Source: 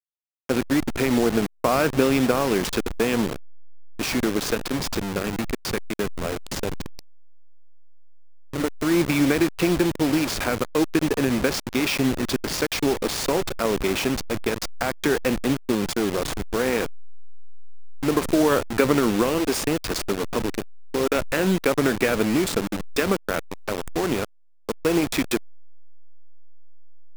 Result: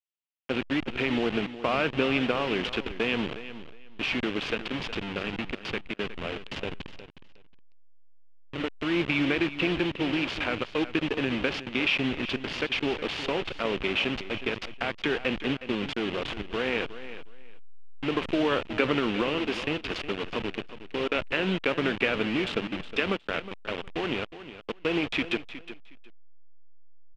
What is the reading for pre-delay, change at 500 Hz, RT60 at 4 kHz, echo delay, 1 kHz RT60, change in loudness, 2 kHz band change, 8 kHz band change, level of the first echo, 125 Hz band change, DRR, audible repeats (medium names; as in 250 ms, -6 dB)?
no reverb, -6.5 dB, no reverb, 364 ms, no reverb, -5.5 dB, -1.0 dB, -21.5 dB, -13.5 dB, -7.5 dB, no reverb, 2